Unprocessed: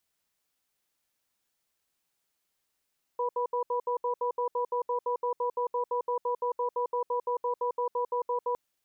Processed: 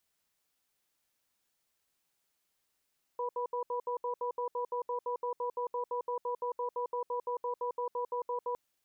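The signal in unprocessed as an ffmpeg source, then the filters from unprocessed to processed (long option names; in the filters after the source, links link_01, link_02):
-f lavfi -i "aevalsrc='0.0355*(sin(2*PI*486*t)+sin(2*PI*982*t))*clip(min(mod(t,0.17),0.1-mod(t,0.17))/0.005,0,1)':duration=5.36:sample_rate=44100"
-af "alimiter=level_in=4.5dB:limit=-24dB:level=0:latency=1:release=11,volume=-4.5dB"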